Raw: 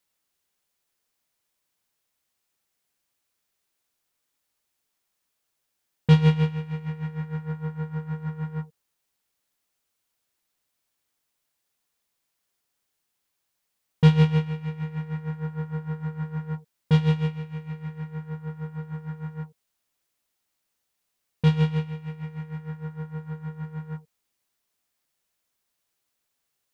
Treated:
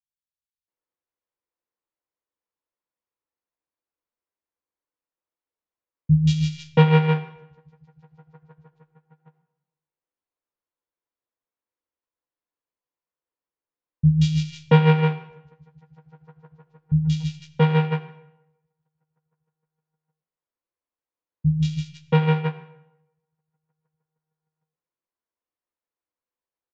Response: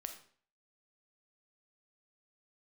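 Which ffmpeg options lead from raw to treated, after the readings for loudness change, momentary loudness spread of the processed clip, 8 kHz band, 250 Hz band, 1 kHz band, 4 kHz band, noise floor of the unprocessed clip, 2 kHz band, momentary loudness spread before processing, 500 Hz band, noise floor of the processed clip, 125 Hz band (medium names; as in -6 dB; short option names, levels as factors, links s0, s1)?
+6.0 dB, 11 LU, no reading, +2.5 dB, +8.5 dB, +4.0 dB, -79 dBFS, +6.0 dB, 16 LU, +7.0 dB, under -85 dBFS, +2.5 dB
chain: -filter_complex "[0:a]aeval=exprs='val(0)+0.5*0.0335*sgn(val(0))':c=same,agate=range=0.00126:threshold=0.0794:ratio=16:detection=peak,equalizer=f=315:t=o:w=0.33:g=6,equalizer=f=500:t=o:w=0.33:g=8,equalizer=f=1000:t=o:w=0.33:g=6,adynamicsmooth=sensitivity=3.5:basefreq=3000,asplit=2[s0][s1];[s1]adelay=14,volume=0.282[s2];[s0][s2]amix=inputs=2:normalize=0,acrossover=split=150|3400[s3][s4][s5];[s5]adelay=180[s6];[s4]adelay=680[s7];[s3][s7][s6]amix=inputs=3:normalize=0,asplit=2[s8][s9];[1:a]atrim=start_sample=2205,asetrate=24255,aresample=44100[s10];[s9][s10]afir=irnorm=-1:irlink=0,volume=0.596[s11];[s8][s11]amix=inputs=2:normalize=0,aresample=16000,aresample=44100,adynamicequalizer=threshold=0.0126:dfrequency=1900:dqfactor=0.7:tfrequency=1900:tqfactor=0.7:attack=5:release=100:ratio=0.375:range=2.5:mode=boostabove:tftype=highshelf"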